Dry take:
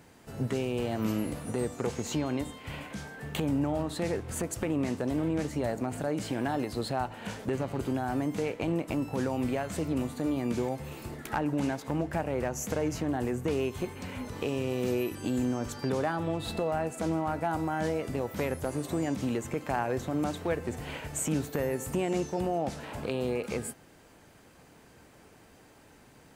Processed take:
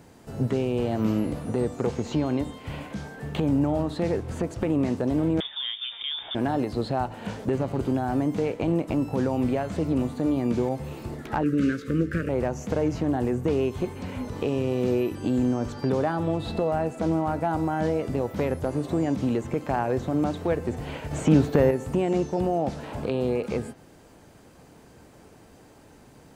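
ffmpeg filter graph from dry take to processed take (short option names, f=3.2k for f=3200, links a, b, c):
-filter_complex "[0:a]asettb=1/sr,asplit=3[a][b][c];[a]atrim=end=5.404[d];[b]atrim=start=5.4:end=6.35,asetpts=PTS-STARTPTS,afade=t=in:d=0.004:c=qsin,afade=t=out:st=0.946:d=0.004:c=qsin,highpass=200,lowpass=f=3.2k:t=q:w=0.5098,lowpass=f=3.2k:t=q:w=0.6013,lowpass=f=3.2k:t=q:w=0.9,lowpass=f=3.2k:t=q:w=2.563,afreqshift=-3800[e];[c]atrim=start=6.346[f];[d][e]acrossfade=d=0.004:c1=hsin:c2=qsin[g];[g][f]acrossfade=d=0.004:c1=qsin:c2=hsin,asettb=1/sr,asplit=3[h][i][j];[h]atrim=end=11.434[k];[i]atrim=start=11.43:end=12.29,asetpts=PTS-STARTPTS,afade=t=in:d=0.004:c=qsin,afade=t=out:st=0.856:d=0.004:c=qsin,asuperstop=centerf=830:order=8:qfactor=0.94,equalizer=f=1.1k:w=1.3:g=13.5,asplit=2[l][m];[m]adelay=18,volume=-12.5dB[n];[l][n]amix=inputs=2:normalize=0,atrim=end_sample=37926[o];[j]atrim=start=12.286[p];[k][o]acrossfade=d=0.004:c1=hsin:c2=qsin[q];[q][p]acrossfade=d=0.004:c1=qsin:c2=hsin,asettb=1/sr,asplit=3[r][s][t];[r]atrim=end=21.114[u];[s]atrim=start=21.11:end=21.71,asetpts=PTS-STARTPTS,afade=t=in:d=0.004:c=qsin,afade=t=out:st=0.596:d=0.004:c=qsin,acontrast=54,acrusher=bits=8:mix=0:aa=0.5[v];[t]atrim=start=21.706[w];[u][v]acrossfade=d=0.004:c1=hsin:c2=qsin[x];[x][w]acrossfade=d=0.004:c1=qsin:c2=hsin,highshelf=f=8.4k:g=-6.5,acrossover=split=4800[y][z];[z]acompressor=threshold=-60dB:ratio=4:attack=1:release=60[aa];[y][aa]amix=inputs=2:normalize=0,equalizer=f=2.1k:t=o:w=2:g=-6,volume=6dB"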